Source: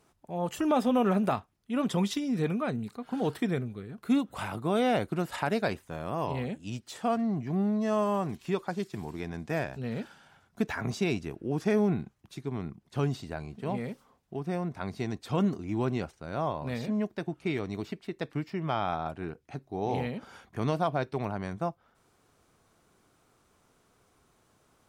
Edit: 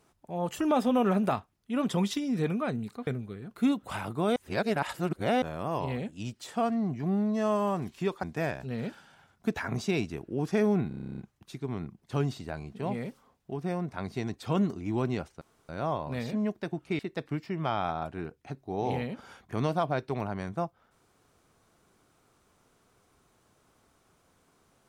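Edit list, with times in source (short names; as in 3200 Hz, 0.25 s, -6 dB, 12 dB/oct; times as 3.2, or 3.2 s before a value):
3.07–3.54 cut
4.83–5.89 reverse
8.7–9.36 cut
12.01 stutter 0.03 s, 11 plays
16.24 insert room tone 0.28 s
17.54–18.03 cut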